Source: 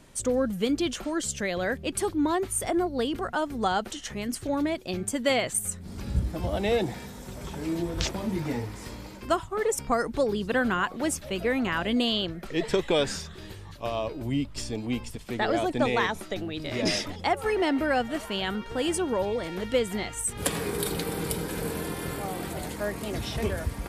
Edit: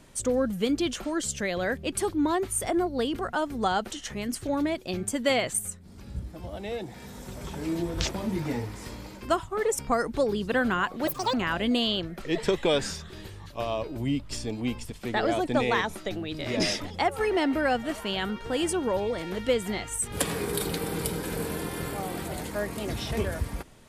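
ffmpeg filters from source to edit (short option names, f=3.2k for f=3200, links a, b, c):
-filter_complex "[0:a]asplit=5[a][b][c][d][e];[a]atrim=end=5.8,asetpts=PTS-STARTPTS,afade=t=out:st=5.54:d=0.26:silence=0.354813[f];[b]atrim=start=5.8:end=6.9,asetpts=PTS-STARTPTS,volume=-9dB[g];[c]atrim=start=6.9:end=11.074,asetpts=PTS-STARTPTS,afade=t=in:d=0.26:silence=0.354813[h];[d]atrim=start=11.07:end=11.59,asetpts=PTS-STARTPTS,asetrate=85995,aresample=44100[i];[e]atrim=start=11.586[j];[f][g][h]concat=n=3:v=0:a=1[k];[k][i]acrossfade=d=0.004:c1=hsin:c2=hsin[l];[l][j]acrossfade=d=0.004:c1=hsin:c2=hsin"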